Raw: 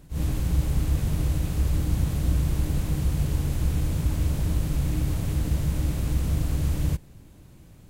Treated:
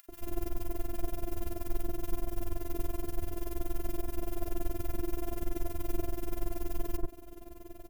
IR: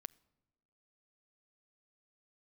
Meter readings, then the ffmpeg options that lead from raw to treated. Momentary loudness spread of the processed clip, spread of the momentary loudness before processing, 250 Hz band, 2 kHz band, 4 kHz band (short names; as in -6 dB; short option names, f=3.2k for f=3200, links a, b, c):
2 LU, 2 LU, -8.5 dB, -10.0 dB, -12.5 dB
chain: -filter_complex "[0:a]areverse,acompressor=threshold=-31dB:ratio=8,areverse,highpass=60,tremolo=f=21:d=0.919,acompressor=mode=upward:threshold=-50dB:ratio=2.5,acrusher=bits=4:mode=log:mix=0:aa=0.000001,equalizer=f=250:t=o:w=1:g=-9,equalizer=f=500:t=o:w=1:g=6,equalizer=f=1k:t=o:w=1:g=-4,equalizer=f=2k:t=o:w=1:g=-6,equalizer=f=4k:t=o:w=1:g=-11,equalizer=f=8k:t=o:w=1:g=-11,afftfilt=real='hypot(re,im)*cos(PI*b)':imag='0':win_size=512:overlap=0.75,acrossover=split=1400[a][b];[a]adelay=90[c];[c][b]amix=inputs=2:normalize=0,volume=15.5dB"